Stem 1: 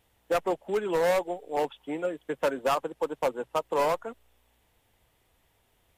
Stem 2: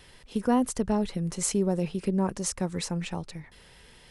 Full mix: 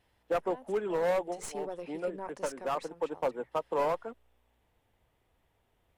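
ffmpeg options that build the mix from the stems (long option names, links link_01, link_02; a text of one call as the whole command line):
ffmpeg -i stem1.wav -i stem2.wav -filter_complex "[0:a]volume=-3dB[link_01];[1:a]highpass=530,aeval=exprs='(tanh(8.91*val(0)+0.65)-tanh(0.65))/8.91':channel_layout=same,volume=-1dB,afade=type=in:start_time=0.82:duration=0.69:silence=0.223872,afade=type=out:start_time=2.34:duration=0.6:silence=0.446684,asplit=2[link_02][link_03];[link_03]apad=whole_len=263619[link_04];[link_01][link_04]sidechaincompress=threshold=-42dB:ratio=8:attack=36:release=362[link_05];[link_05][link_02]amix=inputs=2:normalize=0,highshelf=frequency=2900:gain=-10.5" out.wav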